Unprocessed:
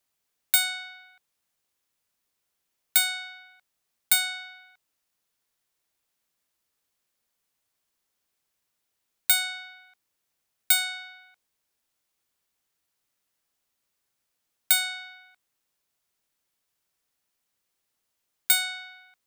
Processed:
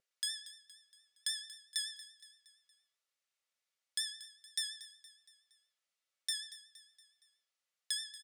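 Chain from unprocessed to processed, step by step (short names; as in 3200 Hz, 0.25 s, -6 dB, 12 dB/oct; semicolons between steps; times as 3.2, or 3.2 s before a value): HPF 930 Hz 6 dB/oct; in parallel at -2 dB: compressor, threshold -31 dBFS, peak gain reduction 14.5 dB; on the sum: vibrato 3 Hz 56 cents; air absorption 270 m; feedback echo 0.546 s, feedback 50%, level -16 dB; on a send at -7.5 dB: reverb RT60 0.50 s, pre-delay 3 ms; on the sum: speed mistake 33 rpm record played at 78 rpm; gain -5 dB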